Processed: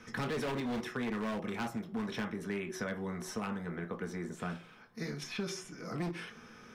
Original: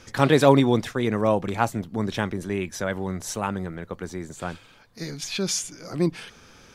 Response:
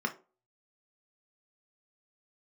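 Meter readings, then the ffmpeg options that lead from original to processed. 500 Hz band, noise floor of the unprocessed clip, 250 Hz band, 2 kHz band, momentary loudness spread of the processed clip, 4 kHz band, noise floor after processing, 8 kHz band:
-15.5 dB, -52 dBFS, -11.5 dB, -9.0 dB, 7 LU, -13.0 dB, -55 dBFS, -16.0 dB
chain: -filter_complex "[1:a]atrim=start_sample=2205[a];[0:a][a]afir=irnorm=-1:irlink=0,volume=12.5dB,asoftclip=hard,volume=-12.5dB,acrossover=split=480|1900[b][c][d];[b]acompressor=threshold=-29dB:ratio=4[e];[c]acompressor=threshold=-35dB:ratio=4[f];[d]acompressor=threshold=-35dB:ratio=4[g];[e][f][g]amix=inputs=3:normalize=0,volume=-8.5dB"

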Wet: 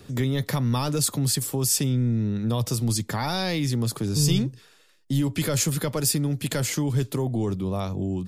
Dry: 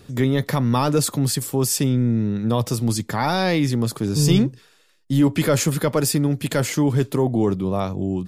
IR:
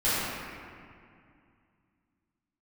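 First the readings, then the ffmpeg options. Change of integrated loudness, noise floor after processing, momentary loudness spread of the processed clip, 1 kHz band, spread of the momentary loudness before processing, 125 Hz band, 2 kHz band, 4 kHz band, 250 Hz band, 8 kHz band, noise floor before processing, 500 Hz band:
-4.0 dB, -55 dBFS, 5 LU, -7.5 dB, 5 LU, -3.0 dB, -5.5 dB, -1.0 dB, -6.0 dB, 0.0 dB, -55 dBFS, -7.5 dB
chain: -filter_complex "[0:a]acrossover=split=130|3000[a][b][c];[b]acompressor=threshold=-29dB:ratio=2.5[d];[a][d][c]amix=inputs=3:normalize=0"

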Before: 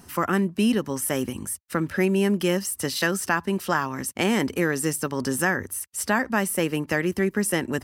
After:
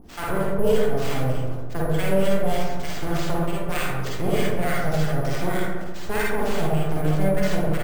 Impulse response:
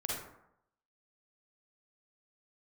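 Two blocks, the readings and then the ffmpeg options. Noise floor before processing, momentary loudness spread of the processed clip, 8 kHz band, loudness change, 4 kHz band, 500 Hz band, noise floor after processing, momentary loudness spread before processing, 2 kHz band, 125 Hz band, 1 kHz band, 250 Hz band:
-51 dBFS, 7 LU, -10.0 dB, -0.5 dB, -2.0 dB, +2.5 dB, -27 dBFS, 6 LU, -4.0 dB, +5.5 dB, 0.0 dB, -2.5 dB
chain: -filter_complex "[0:a]lowshelf=f=470:g=5,aeval=exprs='val(0)+0.00794*(sin(2*PI*50*n/s)+sin(2*PI*2*50*n/s)/2+sin(2*PI*3*50*n/s)/3+sin(2*PI*4*50*n/s)/4+sin(2*PI*5*50*n/s)/5)':c=same,aeval=exprs='abs(val(0))':c=same,acrossover=split=1000[a][b];[a]aeval=exprs='val(0)*(1-1/2+1/2*cos(2*PI*3.3*n/s))':c=same[c];[b]aeval=exprs='val(0)*(1-1/2-1/2*cos(2*PI*3.3*n/s))':c=same[d];[c][d]amix=inputs=2:normalize=0,acrusher=samples=4:mix=1:aa=0.000001,asplit=2[e][f];[f]adelay=137,lowpass=f=920:p=1,volume=-4dB,asplit=2[g][h];[h]adelay=137,lowpass=f=920:p=1,volume=0.51,asplit=2[i][j];[j]adelay=137,lowpass=f=920:p=1,volume=0.51,asplit=2[k][l];[l]adelay=137,lowpass=f=920:p=1,volume=0.51,asplit=2[m][n];[n]adelay=137,lowpass=f=920:p=1,volume=0.51,asplit=2[o][p];[p]adelay=137,lowpass=f=920:p=1,volume=0.51,asplit=2[q][r];[r]adelay=137,lowpass=f=920:p=1,volume=0.51[s];[e][g][i][k][m][o][q][s]amix=inputs=8:normalize=0[t];[1:a]atrim=start_sample=2205[u];[t][u]afir=irnorm=-1:irlink=0"

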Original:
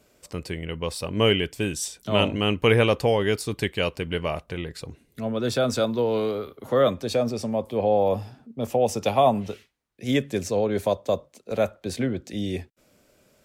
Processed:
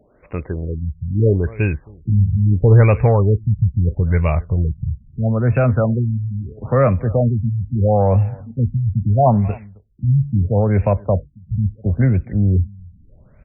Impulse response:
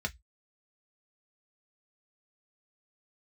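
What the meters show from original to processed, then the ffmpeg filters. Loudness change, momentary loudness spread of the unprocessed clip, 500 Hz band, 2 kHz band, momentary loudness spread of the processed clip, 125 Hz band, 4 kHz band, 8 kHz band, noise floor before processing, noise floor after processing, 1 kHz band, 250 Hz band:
+7.0 dB, 13 LU, +2.0 dB, -2.0 dB, 11 LU, +16.5 dB, under -30 dB, under -40 dB, -63 dBFS, -50 dBFS, +3.0 dB, +6.0 dB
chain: -filter_complex "[0:a]asubboost=boost=11:cutoff=99,asplit=2[a][b];[b]adelay=268.2,volume=-24dB,highshelf=f=4k:g=-6.04[c];[a][c]amix=inputs=2:normalize=0,acontrast=81,afftfilt=real='re*lt(b*sr/1024,200*pow(2800/200,0.5+0.5*sin(2*PI*0.76*pts/sr)))':imag='im*lt(b*sr/1024,200*pow(2800/200,0.5+0.5*sin(2*PI*0.76*pts/sr)))':win_size=1024:overlap=0.75"

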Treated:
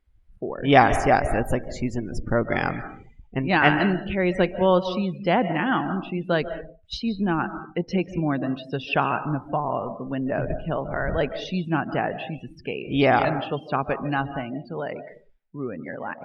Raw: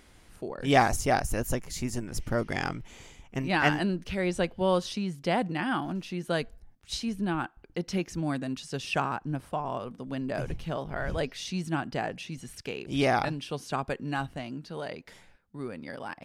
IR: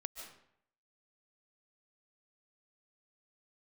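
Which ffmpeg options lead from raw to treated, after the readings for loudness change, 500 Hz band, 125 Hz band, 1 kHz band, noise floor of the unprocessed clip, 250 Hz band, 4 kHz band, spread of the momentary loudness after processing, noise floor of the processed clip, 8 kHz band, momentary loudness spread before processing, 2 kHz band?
+6.5 dB, +7.0 dB, +5.5 dB, +7.0 dB, -58 dBFS, +6.5 dB, +3.0 dB, 14 LU, -55 dBFS, n/a, 14 LU, +6.5 dB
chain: -filter_complex "[0:a]asplit=2[a][b];[1:a]atrim=start_sample=2205,lowpass=4.3k,lowshelf=f=120:g=-6.5[c];[b][c]afir=irnorm=-1:irlink=0,volume=5dB[d];[a][d]amix=inputs=2:normalize=0,afftdn=nr=30:nf=-37"

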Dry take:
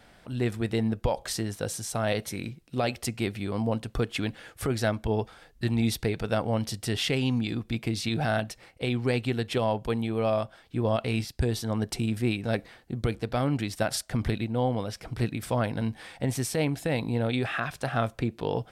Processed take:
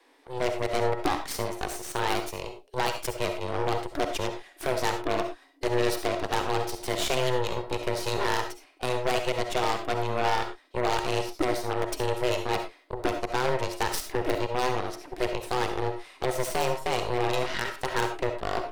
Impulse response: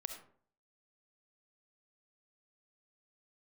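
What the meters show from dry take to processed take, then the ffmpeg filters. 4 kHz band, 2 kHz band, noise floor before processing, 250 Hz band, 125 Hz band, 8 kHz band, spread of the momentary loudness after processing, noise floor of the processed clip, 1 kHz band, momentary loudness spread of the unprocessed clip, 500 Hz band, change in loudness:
+2.0 dB, +2.5 dB, -57 dBFS, -5.5 dB, -7.5 dB, 0.0 dB, 6 LU, -57 dBFS, +6.5 dB, 6 LU, +2.0 dB, 0.0 dB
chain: -filter_complex "[0:a]afreqshift=250,aeval=exprs='0.316*(cos(1*acos(clip(val(0)/0.316,-1,1)))-cos(1*PI/2))+0.0251*(cos(4*acos(clip(val(0)/0.316,-1,1)))-cos(4*PI/2))+0.0891*(cos(6*acos(clip(val(0)/0.316,-1,1)))-cos(6*PI/2))+0.0251*(cos(7*acos(clip(val(0)/0.316,-1,1)))-cos(7*PI/2))+0.0891*(cos(8*acos(clip(val(0)/0.316,-1,1)))-cos(8*PI/2))':c=same,aeval=exprs='0.141*(abs(mod(val(0)/0.141+3,4)-2)-1)':c=same[a];[1:a]atrim=start_sample=2205,afade=t=out:st=0.17:d=0.01,atrim=end_sample=7938[b];[a][b]afir=irnorm=-1:irlink=0,volume=4dB"

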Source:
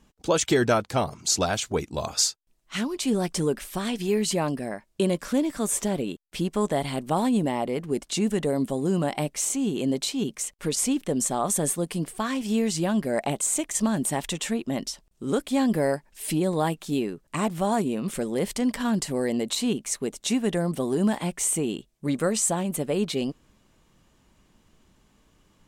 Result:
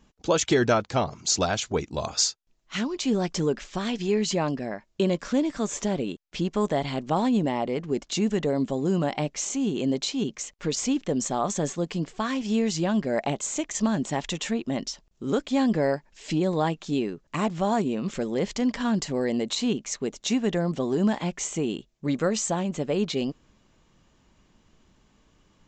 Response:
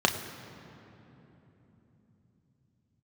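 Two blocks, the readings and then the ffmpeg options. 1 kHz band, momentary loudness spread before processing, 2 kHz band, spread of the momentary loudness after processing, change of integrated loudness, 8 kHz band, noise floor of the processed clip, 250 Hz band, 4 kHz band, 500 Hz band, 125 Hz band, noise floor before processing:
0.0 dB, 6 LU, 0.0 dB, 6 LU, -0.5 dB, -4.0 dB, -64 dBFS, 0.0 dB, 0.0 dB, 0.0 dB, 0.0 dB, -64 dBFS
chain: -af "aresample=16000,aresample=44100"

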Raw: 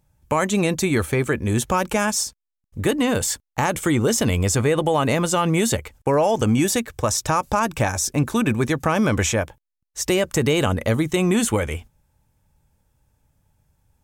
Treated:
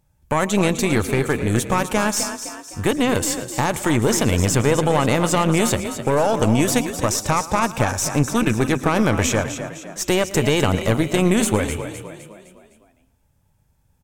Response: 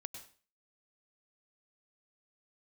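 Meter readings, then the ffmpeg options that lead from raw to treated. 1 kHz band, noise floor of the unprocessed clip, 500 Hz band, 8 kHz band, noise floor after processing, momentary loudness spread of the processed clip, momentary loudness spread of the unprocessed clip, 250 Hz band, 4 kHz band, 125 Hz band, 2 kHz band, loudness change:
+1.5 dB, -82 dBFS, +1.0 dB, +1.0 dB, -62 dBFS, 7 LU, 5 LU, +1.5 dB, +1.5 dB, +1.5 dB, +1.5 dB, +1.5 dB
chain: -filter_complex "[0:a]asplit=6[a][b][c][d][e][f];[b]adelay=256,afreqshift=35,volume=-9.5dB[g];[c]adelay=512,afreqshift=70,volume=-16.2dB[h];[d]adelay=768,afreqshift=105,volume=-23dB[i];[e]adelay=1024,afreqshift=140,volume=-29.7dB[j];[f]adelay=1280,afreqshift=175,volume=-36.5dB[k];[a][g][h][i][j][k]amix=inputs=6:normalize=0,asplit=2[l][m];[1:a]atrim=start_sample=2205,adelay=112[n];[m][n]afir=irnorm=-1:irlink=0,volume=-12.5dB[o];[l][o]amix=inputs=2:normalize=0,aeval=exprs='0.596*(cos(1*acos(clip(val(0)/0.596,-1,1)))-cos(1*PI/2))+0.119*(cos(4*acos(clip(val(0)/0.596,-1,1)))-cos(4*PI/2))+0.0376*(cos(6*acos(clip(val(0)/0.596,-1,1)))-cos(6*PI/2))+0.0133*(cos(8*acos(clip(val(0)/0.596,-1,1)))-cos(8*PI/2))':c=same"

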